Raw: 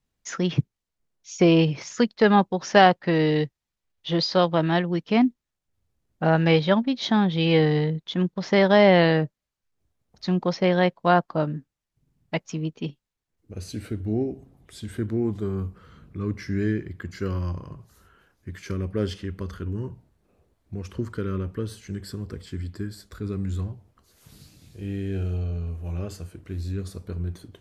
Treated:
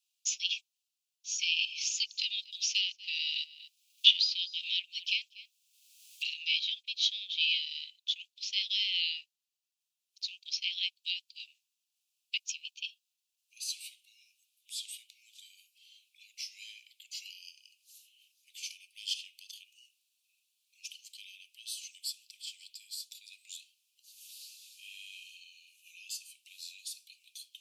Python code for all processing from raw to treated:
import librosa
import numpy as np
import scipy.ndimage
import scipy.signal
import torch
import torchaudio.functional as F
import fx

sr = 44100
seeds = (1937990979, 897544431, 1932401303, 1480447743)

y = fx.chain(x, sr, fx.echo_single(ms=238, db=-23.0),
    fx.band_squash(depth_pct=100), at=(1.43, 6.34))
y = scipy.signal.sosfilt(scipy.signal.butter(16, 2500.0, 'highpass', fs=sr, output='sos'), y)
y = fx.rider(y, sr, range_db=3, speed_s=2.0)
y = y * librosa.db_to_amplitude(3.0)